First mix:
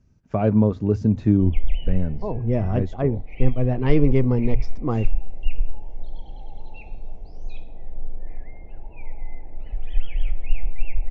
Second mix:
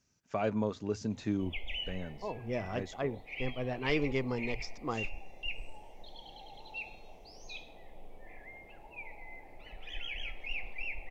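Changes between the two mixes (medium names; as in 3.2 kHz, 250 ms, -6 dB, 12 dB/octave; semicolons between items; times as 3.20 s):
speech -5.5 dB; master: add tilt EQ +4.5 dB/octave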